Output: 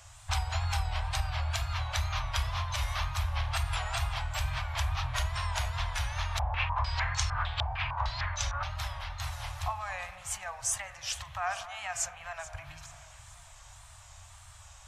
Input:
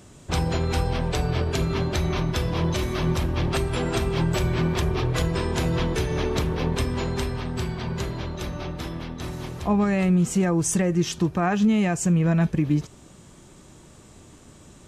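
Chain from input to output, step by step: spring tank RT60 1.7 s, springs 42 ms, chirp 55 ms, DRR 11.5 dB; compressor, threshold -24 dBFS, peak gain reduction 9 dB; inverse Chebyshev band-stop 160–460 Hz, stop band 40 dB; wow and flutter 97 cents; echo with dull and thin repeats by turns 0.216 s, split 1400 Hz, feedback 71%, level -13.5 dB; 6.39–8.63 stepped low-pass 6.6 Hz 750–6500 Hz

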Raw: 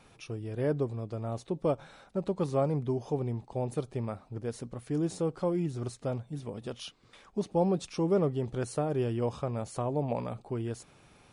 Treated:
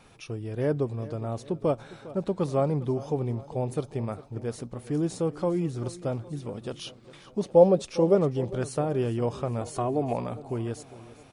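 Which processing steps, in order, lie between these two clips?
7.43–8.15 bell 550 Hz +12 dB 0.45 oct; 9.61–10.14 comb 2.8 ms, depth 69%; feedback echo 0.405 s, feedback 53%, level -17.5 dB; gain +3 dB

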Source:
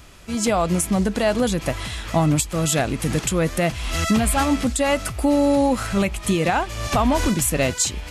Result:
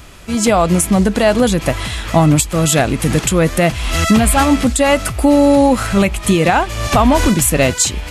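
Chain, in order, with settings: bell 5500 Hz -2 dB; gain +7.5 dB

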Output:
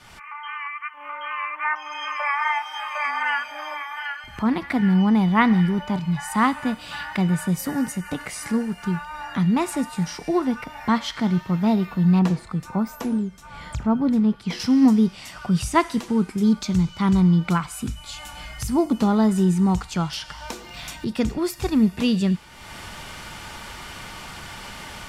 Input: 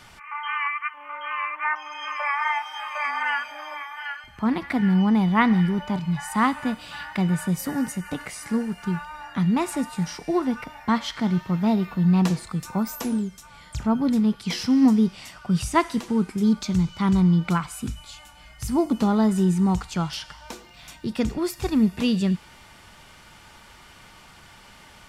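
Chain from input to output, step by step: opening faded in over 1.82 s; 12.19–14.6 high shelf 3200 Hz -11 dB; upward compressor, threshold -28 dBFS; gain +1.5 dB

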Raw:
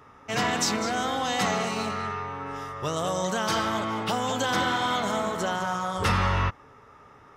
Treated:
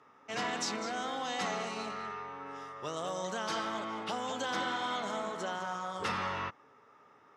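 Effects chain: BPF 210–7700 Hz; gain -8.5 dB

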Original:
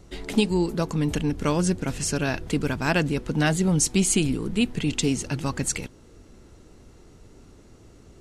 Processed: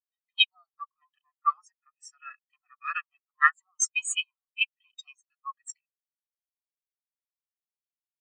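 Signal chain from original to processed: minimum comb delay 1.6 ms; steep high-pass 930 Hz 36 dB/oct; spectral expander 4:1; gain +5 dB

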